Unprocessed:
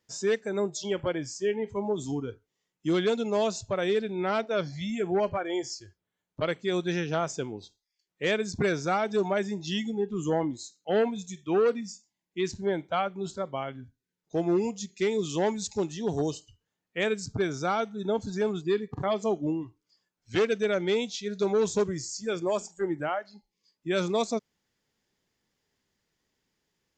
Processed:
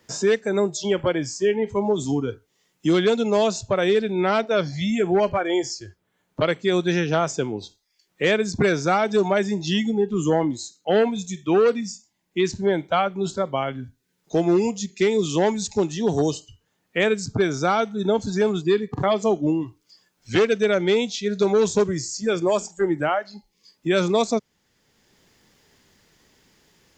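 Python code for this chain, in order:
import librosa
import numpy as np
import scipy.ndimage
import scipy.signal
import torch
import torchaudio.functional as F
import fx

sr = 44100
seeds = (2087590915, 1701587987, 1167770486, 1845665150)

y = fx.band_squash(x, sr, depth_pct=40)
y = y * librosa.db_to_amplitude(7.0)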